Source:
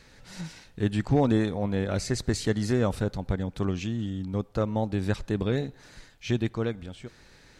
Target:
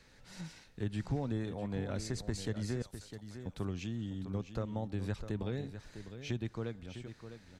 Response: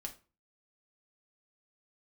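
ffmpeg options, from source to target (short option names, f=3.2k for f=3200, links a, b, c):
-filter_complex "[0:a]acrossover=split=130[a][b];[b]acompressor=threshold=-29dB:ratio=3[c];[a][c]amix=inputs=2:normalize=0,asettb=1/sr,asplit=3[d][e][f];[d]atrim=end=2.824[g];[e]atrim=start=2.82:end=3.46,asetpts=PTS-STARTPTS,afade=t=in:d=0.004:c=qsin,afade=t=out:st=0.636:d=0.004:c=qsin,aderivative[h];[f]atrim=start=3.456[i];[g][h]acrossfade=d=0.004:c1=hsin:c2=qsin[j];[j][i]acrossfade=d=0.004:c1=qsin:c2=hsin,aecho=1:1:654:0.299,volume=-7.5dB"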